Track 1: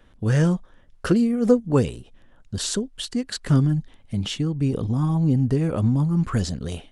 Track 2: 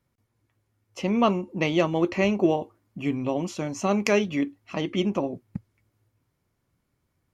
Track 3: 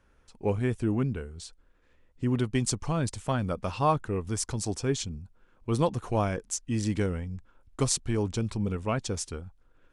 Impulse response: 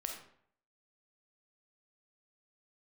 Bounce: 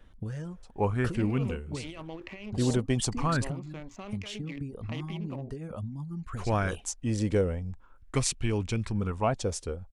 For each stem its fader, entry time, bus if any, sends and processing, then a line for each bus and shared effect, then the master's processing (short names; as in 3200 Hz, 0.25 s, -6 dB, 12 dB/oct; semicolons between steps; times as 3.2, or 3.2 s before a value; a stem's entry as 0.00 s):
-4.5 dB, 0.00 s, no send, reverb removal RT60 1.5 s; compressor 16:1, threshold -31 dBFS, peak gain reduction 20.5 dB
-17.5 dB, 0.15 s, no send, Wiener smoothing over 15 samples; bell 2600 Hz +12.5 dB 1.7 oct; negative-ratio compressor -24 dBFS, ratio -1
-2.5 dB, 0.35 s, muted 3.47–6.36, no send, LFO bell 0.43 Hz 510–2700 Hz +11 dB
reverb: off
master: low shelf 91 Hz +7 dB